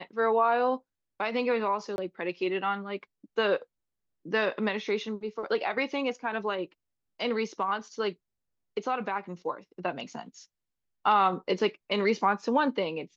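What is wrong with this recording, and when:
1.96–1.98 s: dropout 21 ms

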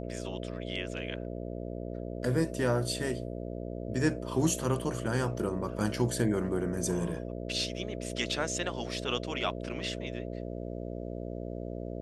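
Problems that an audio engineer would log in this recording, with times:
buzz 60 Hz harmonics 11 -38 dBFS

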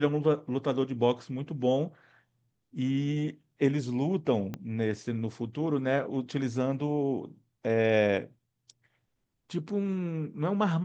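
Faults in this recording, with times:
4.54 s: pop -22 dBFS

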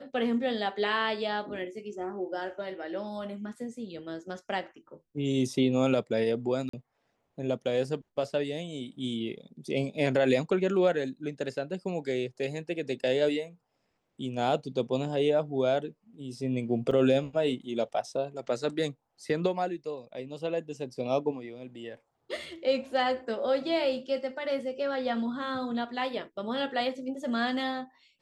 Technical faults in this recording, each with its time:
6.69–6.73 s: dropout 44 ms
16.91 s: dropout 3.7 ms

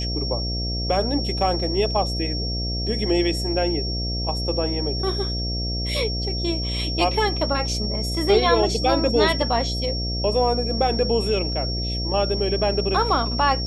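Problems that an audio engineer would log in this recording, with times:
buzz 60 Hz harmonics 12 -27 dBFS
whine 5.5 kHz -28 dBFS

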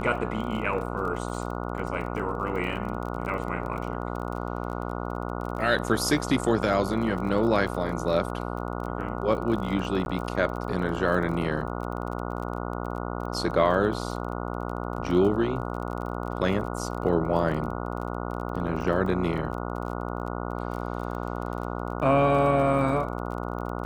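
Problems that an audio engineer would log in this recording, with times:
buzz 60 Hz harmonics 24 -32 dBFS
crackle 30 per s -34 dBFS
10.05–10.06 s: dropout 11 ms

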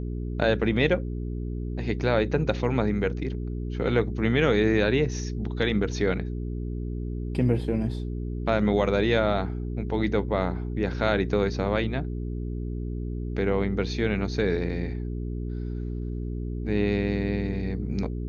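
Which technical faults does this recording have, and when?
hum 60 Hz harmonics 7 -31 dBFS

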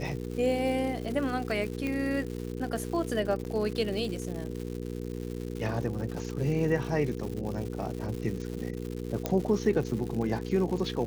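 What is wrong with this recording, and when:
crackle 250 per s -36 dBFS
hum 60 Hz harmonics 8 -36 dBFS
1.87 s: pop -20 dBFS
3.44–3.45 s: dropout 9.7 ms
9.26 s: pop -14 dBFS

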